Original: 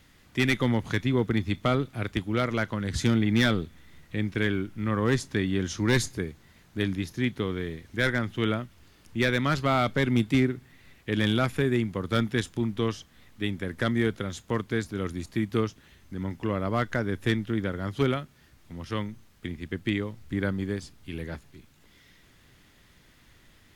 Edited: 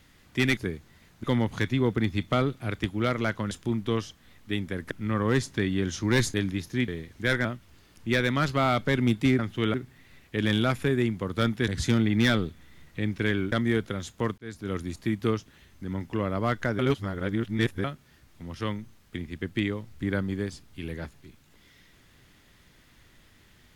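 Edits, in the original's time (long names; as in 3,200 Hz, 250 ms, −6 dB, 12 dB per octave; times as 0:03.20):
0:02.84–0:04.68: swap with 0:12.42–0:13.82
0:06.11–0:06.78: move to 0:00.57
0:07.32–0:07.62: remove
0:08.19–0:08.54: move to 0:10.48
0:14.68–0:15.02: fade in
0:17.09–0:18.14: reverse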